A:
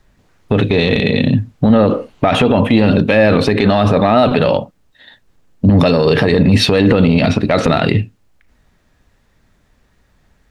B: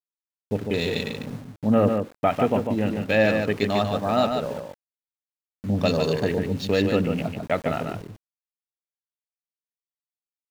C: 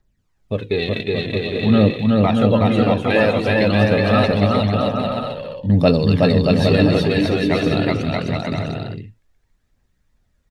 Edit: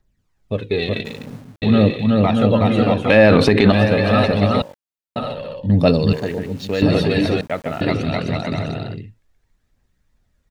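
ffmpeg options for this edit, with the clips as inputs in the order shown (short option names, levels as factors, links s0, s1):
-filter_complex "[1:a]asplit=4[s0][s1][s2][s3];[2:a]asplit=6[s4][s5][s6][s7][s8][s9];[s4]atrim=end=1.052[s10];[s0]atrim=start=1.048:end=1.622[s11];[s5]atrim=start=1.618:end=3.102[s12];[0:a]atrim=start=3.098:end=3.722[s13];[s6]atrim=start=3.718:end=4.622[s14];[s1]atrim=start=4.618:end=5.162[s15];[s7]atrim=start=5.158:end=6.132[s16];[s2]atrim=start=6.128:end=6.822[s17];[s8]atrim=start=6.818:end=7.412[s18];[s3]atrim=start=7.408:end=7.812[s19];[s9]atrim=start=7.808[s20];[s10][s11]acrossfade=d=0.004:c1=hsin:c2=hsin[s21];[s21][s12]acrossfade=d=0.004:c1=hsin:c2=hsin[s22];[s22][s13]acrossfade=d=0.004:c1=hsin:c2=hsin[s23];[s23][s14]acrossfade=d=0.004:c1=hsin:c2=hsin[s24];[s24][s15]acrossfade=d=0.004:c1=hsin:c2=hsin[s25];[s25][s16]acrossfade=d=0.004:c1=hsin:c2=hsin[s26];[s26][s17]acrossfade=d=0.004:c1=hsin:c2=hsin[s27];[s27][s18]acrossfade=d=0.004:c1=hsin:c2=hsin[s28];[s28][s19]acrossfade=d=0.004:c1=hsin:c2=hsin[s29];[s29][s20]acrossfade=d=0.004:c1=hsin:c2=hsin"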